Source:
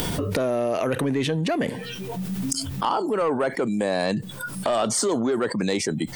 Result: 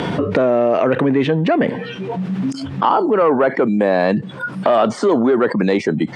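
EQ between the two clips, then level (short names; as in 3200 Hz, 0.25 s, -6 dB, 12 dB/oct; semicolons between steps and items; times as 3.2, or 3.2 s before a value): BPF 150–2200 Hz; +9.0 dB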